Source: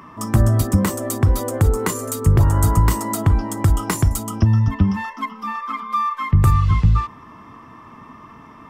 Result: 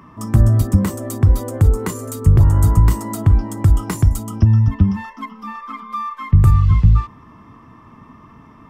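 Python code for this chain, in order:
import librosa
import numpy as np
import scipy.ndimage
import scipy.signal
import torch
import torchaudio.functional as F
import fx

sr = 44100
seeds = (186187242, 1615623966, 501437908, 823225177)

y = fx.low_shelf(x, sr, hz=260.0, db=9.5)
y = y * librosa.db_to_amplitude(-5.0)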